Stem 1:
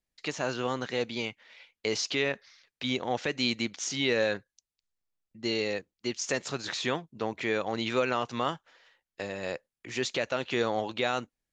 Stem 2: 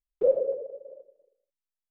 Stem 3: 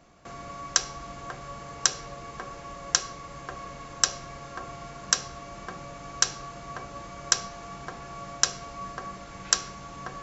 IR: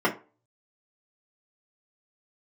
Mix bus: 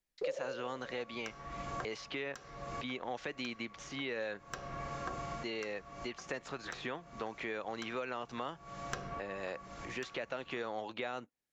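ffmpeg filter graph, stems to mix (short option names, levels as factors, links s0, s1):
-filter_complex "[0:a]highpass=f=170:p=1,volume=0.794,asplit=2[s0][s1];[1:a]volume=0.631[s2];[2:a]asoftclip=type=hard:threshold=0.473,adelay=500,volume=1.33[s3];[s1]apad=whole_len=473136[s4];[s3][s4]sidechaincompress=threshold=0.00251:ratio=3:attack=7.1:release=270[s5];[s0][s2][s5]amix=inputs=3:normalize=0,acrossover=split=660|2600[s6][s7][s8];[s6]acompressor=threshold=0.00794:ratio=4[s9];[s7]acompressor=threshold=0.00891:ratio=4[s10];[s8]acompressor=threshold=0.00141:ratio=4[s11];[s9][s10][s11]amix=inputs=3:normalize=0"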